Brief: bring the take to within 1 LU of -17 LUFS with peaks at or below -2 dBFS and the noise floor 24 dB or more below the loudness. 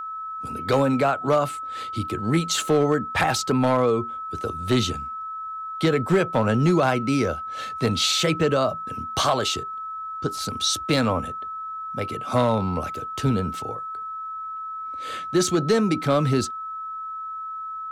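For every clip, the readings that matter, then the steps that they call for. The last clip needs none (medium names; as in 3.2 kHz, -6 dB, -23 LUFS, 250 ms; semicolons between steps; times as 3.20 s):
clipped samples 0.4%; clipping level -12.5 dBFS; steady tone 1.3 kHz; tone level -30 dBFS; loudness -24.0 LUFS; peak level -12.5 dBFS; loudness target -17.0 LUFS
-> clip repair -12.5 dBFS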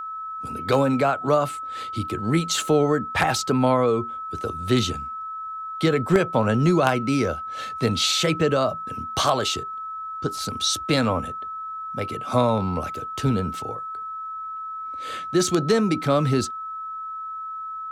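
clipped samples 0.0%; steady tone 1.3 kHz; tone level -30 dBFS
-> band-stop 1.3 kHz, Q 30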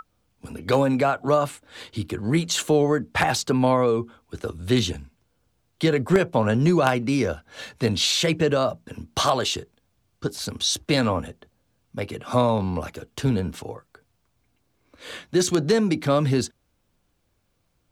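steady tone not found; loudness -23.0 LUFS; peak level -3.0 dBFS; loudness target -17.0 LUFS
-> trim +6 dB; peak limiter -2 dBFS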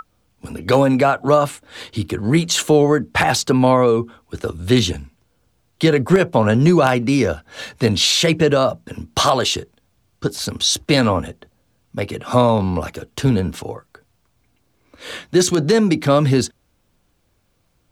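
loudness -17.0 LUFS; peak level -2.0 dBFS; noise floor -64 dBFS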